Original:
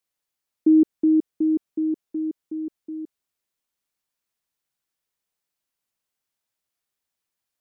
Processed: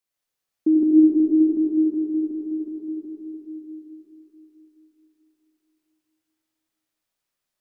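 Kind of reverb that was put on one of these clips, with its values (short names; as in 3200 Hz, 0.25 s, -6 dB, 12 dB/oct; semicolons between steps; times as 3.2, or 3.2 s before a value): digital reverb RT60 3.8 s, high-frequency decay 0.75×, pre-delay 35 ms, DRR -4 dB; gain -2.5 dB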